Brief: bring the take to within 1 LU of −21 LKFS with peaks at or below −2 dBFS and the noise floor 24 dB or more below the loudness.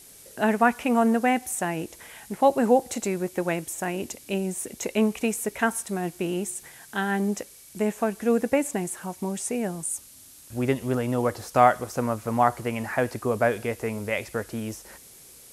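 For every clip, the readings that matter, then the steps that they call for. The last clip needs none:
background noise floor −49 dBFS; target noise floor −50 dBFS; integrated loudness −26.0 LKFS; sample peak −3.5 dBFS; target loudness −21.0 LKFS
→ noise reduction from a noise print 6 dB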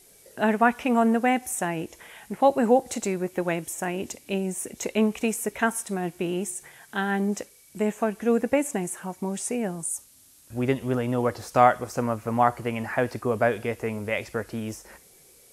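background noise floor −55 dBFS; integrated loudness −26.0 LKFS; sample peak −3.5 dBFS; target loudness −21.0 LKFS
→ level +5 dB
brickwall limiter −2 dBFS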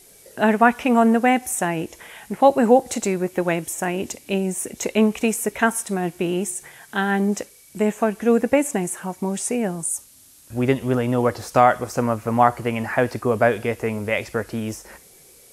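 integrated loudness −21.5 LKFS; sample peak −2.0 dBFS; background noise floor −50 dBFS

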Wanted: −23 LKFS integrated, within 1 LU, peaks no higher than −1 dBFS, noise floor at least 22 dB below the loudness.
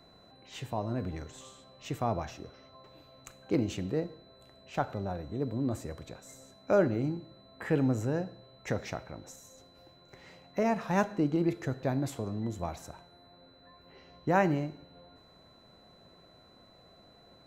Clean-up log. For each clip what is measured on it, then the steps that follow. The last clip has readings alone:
interfering tone 4,000 Hz; level of the tone −61 dBFS; integrated loudness −32.5 LKFS; sample peak −12.0 dBFS; target loudness −23.0 LKFS
→ notch filter 4,000 Hz, Q 30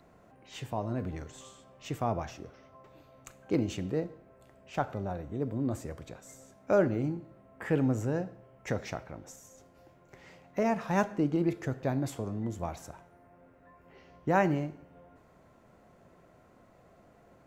interfering tone none found; integrated loudness −32.5 LKFS; sample peak −12.0 dBFS; target loudness −23.0 LKFS
→ level +9.5 dB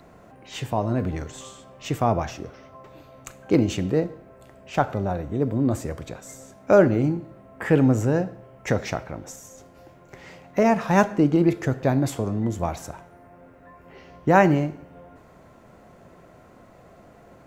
integrated loudness −23.0 LKFS; sample peak −2.5 dBFS; background noise floor −51 dBFS

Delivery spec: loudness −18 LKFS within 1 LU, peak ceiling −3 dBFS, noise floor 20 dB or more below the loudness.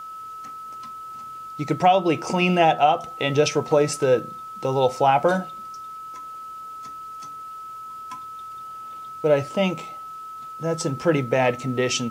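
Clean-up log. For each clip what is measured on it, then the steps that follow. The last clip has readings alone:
crackle rate 19 per second; interfering tone 1,300 Hz; level of the tone −34 dBFS; integrated loudness −21.5 LKFS; sample peak −6.0 dBFS; target loudness −18.0 LKFS
→ click removal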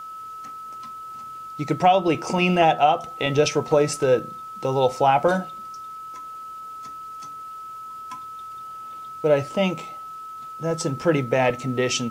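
crackle rate 0.25 per second; interfering tone 1,300 Hz; level of the tone −34 dBFS
→ notch filter 1,300 Hz, Q 30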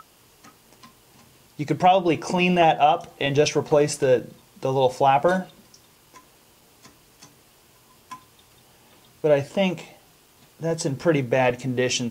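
interfering tone none found; integrated loudness −21.5 LKFS; sample peak −5.5 dBFS; target loudness −18.0 LKFS
→ level +3.5 dB
brickwall limiter −3 dBFS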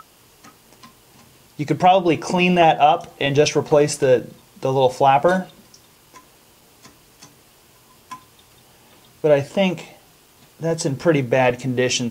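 integrated loudness −18.0 LKFS; sample peak −3.0 dBFS; background noise floor −53 dBFS

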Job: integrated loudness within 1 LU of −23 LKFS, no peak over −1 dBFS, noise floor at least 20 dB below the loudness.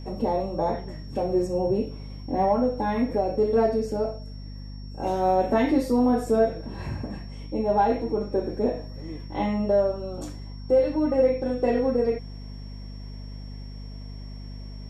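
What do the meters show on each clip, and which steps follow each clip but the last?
mains hum 50 Hz; hum harmonics up to 250 Hz; level of the hum −35 dBFS; interfering tone 5,500 Hz; level of the tone −51 dBFS; integrated loudness −25.0 LKFS; sample peak −10.5 dBFS; target loudness −23.0 LKFS
→ mains-hum notches 50/100/150/200/250 Hz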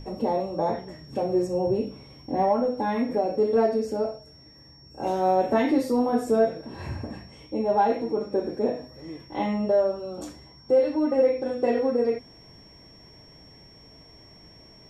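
mains hum none found; interfering tone 5,500 Hz; level of the tone −51 dBFS
→ notch filter 5,500 Hz, Q 30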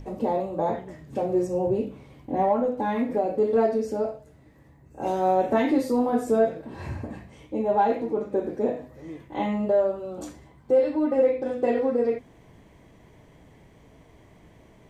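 interfering tone none found; integrated loudness −25.5 LKFS; sample peak −11.5 dBFS; target loudness −23.0 LKFS
→ level +2.5 dB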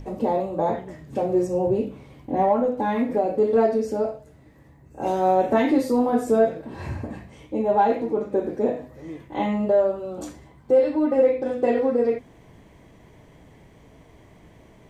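integrated loudness −23.0 LKFS; sample peak −9.0 dBFS; background noise floor −52 dBFS

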